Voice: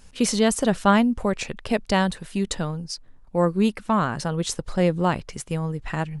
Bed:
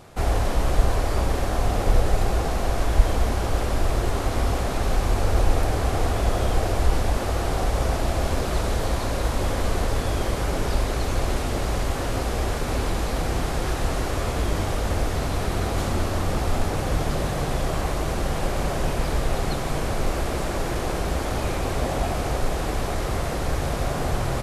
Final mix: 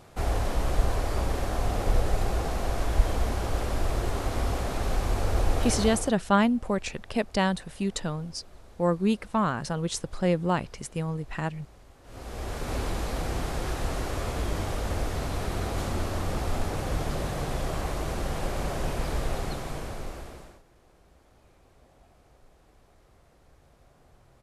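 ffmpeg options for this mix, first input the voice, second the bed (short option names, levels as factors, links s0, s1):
-filter_complex "[0:a]adelay=5450,volume=0.631[s0];[1:a]volume=7.94,afade=t=out:st=5.81:d=0.33:silence=0.0668344,afade=t=in:st=12.03:d=0.72:silence=0.0707946,afade=t=out:st=19.26:d=1.36:silence=0.0375837[s1];[s0][s1]amix=inputs=2:normalize=0"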